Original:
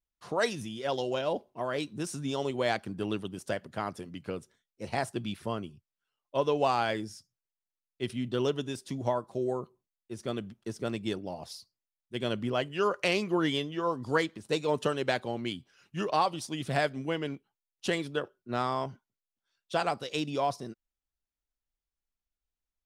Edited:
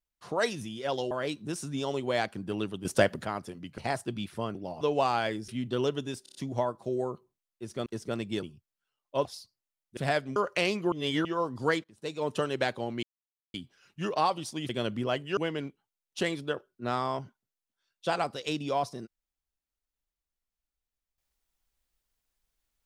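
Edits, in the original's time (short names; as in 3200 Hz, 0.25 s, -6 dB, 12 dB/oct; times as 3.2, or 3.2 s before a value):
1.11–1.62 cut
3.36–3.76 gain +10 dB
4.29–4.86 cut
5.63–6.45 swap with 11.17–11.43
7.12–8.09 cut
8.84 stutter 0.03 s, 5 plays
10.35–10.6 cut
12.15–12.83 swap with 16.65–17.04
13.39–13.72 reverse
14.31–14.91 fade in, from -19.5 dB
15.5 insert silence 0.51 s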